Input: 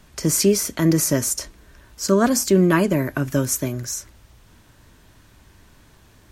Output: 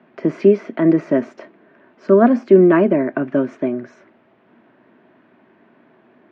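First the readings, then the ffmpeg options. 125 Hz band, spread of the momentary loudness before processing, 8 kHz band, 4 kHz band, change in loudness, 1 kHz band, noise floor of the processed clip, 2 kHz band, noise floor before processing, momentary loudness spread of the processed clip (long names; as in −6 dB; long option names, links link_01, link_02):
−3.5 dB, 12 LU, below −35 dB, below −15 dB, +4.0 dB, +3.5 dB, −55 dBFS, −0.5 dB, −53 dBFS, 12 LU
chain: -af "highpass=frequency=180:width=0.5412,highpass=frequency=180:width=1.3066,equalizer=frequency=240:width_type=q:width=4:gain=7,equalizer=frequency=370:width_type=q:width=4:gain=8,equalizer=frequency=660:width_type=q:width=4:gain=9,lowpass=frequency=2400:width=0.5412,lowpass=frequency=2400:width=1.3066"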